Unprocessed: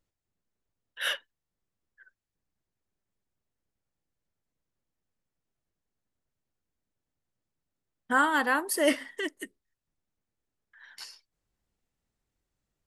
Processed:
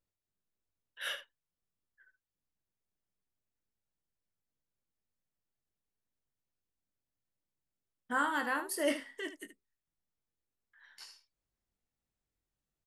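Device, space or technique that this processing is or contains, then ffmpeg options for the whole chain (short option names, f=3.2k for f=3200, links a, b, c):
slapback doubling: -filter_complex "[0:a]asplit=3[a][b][c];[b]adelay=21,volume=-7dB[d];[c]adelay=75,volume=-11dB[e];[a][d][e]amix=inputs=3:normalize=0,volume=-8.5dB"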